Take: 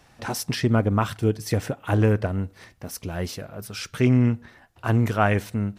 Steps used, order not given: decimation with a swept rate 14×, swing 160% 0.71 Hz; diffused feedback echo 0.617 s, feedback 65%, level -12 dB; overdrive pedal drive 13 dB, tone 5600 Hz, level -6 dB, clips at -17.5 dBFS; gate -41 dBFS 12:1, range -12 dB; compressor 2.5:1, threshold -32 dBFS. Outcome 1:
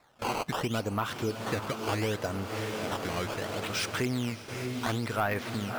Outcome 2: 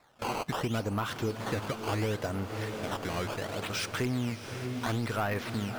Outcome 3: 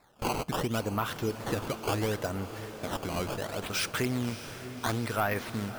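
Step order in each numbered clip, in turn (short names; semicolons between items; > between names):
decimation with a swept rate > diffused feedback echo > compressor > overdrive pedal > gate; decimation with a swept rate > overdrive pedal > gate > diffused feedback echo > compressor; gate > compressor > overdrive pedal > decimation with a swept rate > diffused feedback echo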